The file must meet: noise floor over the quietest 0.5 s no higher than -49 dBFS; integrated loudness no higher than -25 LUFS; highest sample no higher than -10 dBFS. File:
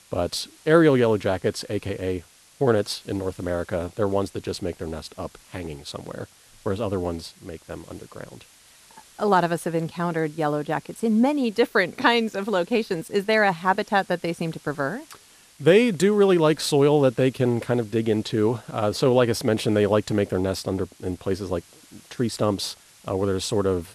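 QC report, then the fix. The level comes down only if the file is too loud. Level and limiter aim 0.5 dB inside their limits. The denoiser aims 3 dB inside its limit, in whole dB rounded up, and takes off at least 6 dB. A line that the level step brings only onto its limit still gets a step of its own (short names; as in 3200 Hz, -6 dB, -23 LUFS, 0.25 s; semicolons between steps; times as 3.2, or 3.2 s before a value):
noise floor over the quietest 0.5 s -52 dBFS: OK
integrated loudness -23.0 LUFS: fail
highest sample -6.0 dBFS: fail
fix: gain -2.5 dB; limiter -10.5 dBFS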